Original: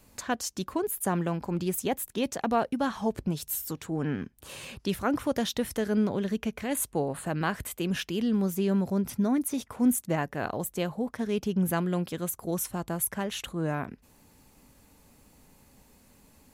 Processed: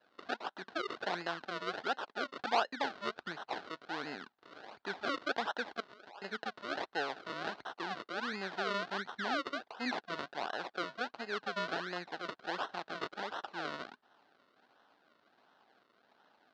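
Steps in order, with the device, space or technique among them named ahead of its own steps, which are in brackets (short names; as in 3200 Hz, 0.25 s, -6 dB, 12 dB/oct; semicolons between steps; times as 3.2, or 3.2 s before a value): 5.8–6.22 Chebyshev band-pass 1100–2500 Hz, order 2; circuit-bent sampling toy (decimation with a swept rate 37×, swing 100% 1.4 Hz; speaker cabinet 510–4600 Hz, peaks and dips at 520 Hz -4 dB, 780 Hz +4 dB, 1500 Hz +7 dB, 2300 Hz -4 dB, 4100 Hz +4 dB); gain -4.5 dB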